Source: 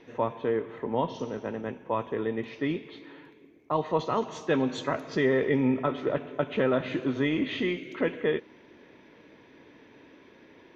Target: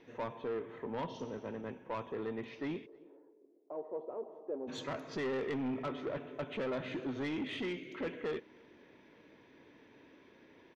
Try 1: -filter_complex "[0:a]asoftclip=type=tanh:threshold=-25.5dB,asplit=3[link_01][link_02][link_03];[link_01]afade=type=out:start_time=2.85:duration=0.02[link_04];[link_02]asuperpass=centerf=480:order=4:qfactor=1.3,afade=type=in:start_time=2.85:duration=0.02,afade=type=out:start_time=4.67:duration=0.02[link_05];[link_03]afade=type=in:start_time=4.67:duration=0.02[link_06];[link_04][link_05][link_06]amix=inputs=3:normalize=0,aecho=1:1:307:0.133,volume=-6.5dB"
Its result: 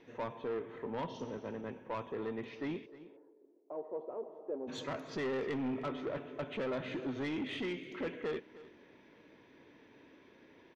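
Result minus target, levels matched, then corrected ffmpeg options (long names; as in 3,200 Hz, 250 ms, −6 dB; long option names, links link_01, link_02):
echo-to-direct +11 dB
-filter_complex "[0:a]asoftclip=type=tanh:threshold=-25.5dB,asplit=3[link_01][link_02][link_03];[link_01]afade=type=out:start_time=2.85:duration=0.02[link_04];[link_02]asuperpass=centerf=480:order=4:qfactor=1.3,afade=type=in:start_time=2.85:duration=0.02,afade=type=out:start_time=4.67:duration=0.02[link_05];[link_03]afade=type=in:start_time=4.67:duration=0.02[link_06];[link_04][link_05][link_06]amix=inputs=3:normalize=0,aecho=1:1:307:0.0376,volume=-6.5dB"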